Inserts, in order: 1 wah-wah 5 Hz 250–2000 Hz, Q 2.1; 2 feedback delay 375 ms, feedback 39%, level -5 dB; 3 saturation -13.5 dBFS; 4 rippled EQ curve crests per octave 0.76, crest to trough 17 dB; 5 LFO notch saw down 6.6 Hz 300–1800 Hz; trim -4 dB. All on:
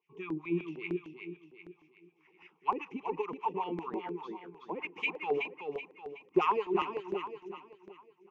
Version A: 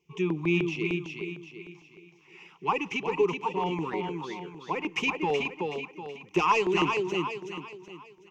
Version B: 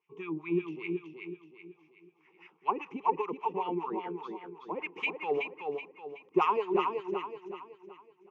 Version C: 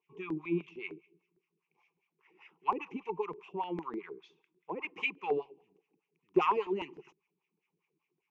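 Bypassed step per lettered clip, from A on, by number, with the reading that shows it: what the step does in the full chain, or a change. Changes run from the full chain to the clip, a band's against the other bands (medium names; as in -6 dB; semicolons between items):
1, crest factor change -3.5 dB; 5, 1 kHz band +2.0 dB; 2, momentary loudness spread change -3 LU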